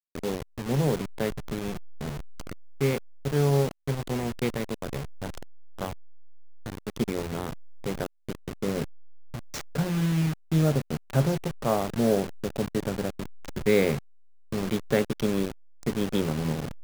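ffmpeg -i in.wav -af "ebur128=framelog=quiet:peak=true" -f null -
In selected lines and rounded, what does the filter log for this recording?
Integrated loudness:
  I:         -28.9 LUFS
  Threshold: -39.3 LUFS
Loudness range:
  LRA:         8.1 LU
  Threshold: -49.4 LUFS
  LRA low:   -34.9 LUFS
  LRA high:  -26.8 LUFS
True peak:
  Peak:       -9.4 dBFS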